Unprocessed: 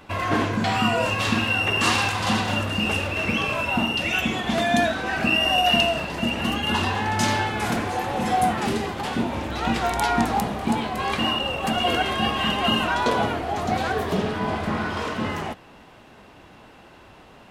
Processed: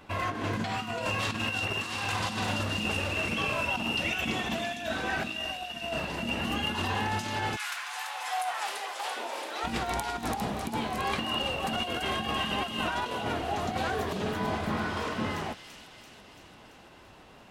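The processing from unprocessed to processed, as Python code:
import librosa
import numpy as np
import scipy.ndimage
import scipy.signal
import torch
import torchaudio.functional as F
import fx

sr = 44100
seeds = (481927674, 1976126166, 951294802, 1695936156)

y = fx.highpass(x, sr, hz=fx.line((7.55, 1300.0), (9.63, 380.0)), slope=24, at=(7.55, 9.63), fade=0.02)
y = fx.over_compress(y, sr, threshold_db=-24.0, ratio=-0.5)
y = fx.echo_wet_highpass(y, sr, ms=337, feedback_pct=63, hz=3500.0, wet_db=-4.0)
y = F.gain(torch.from_numpy(y), -6.5).numpy()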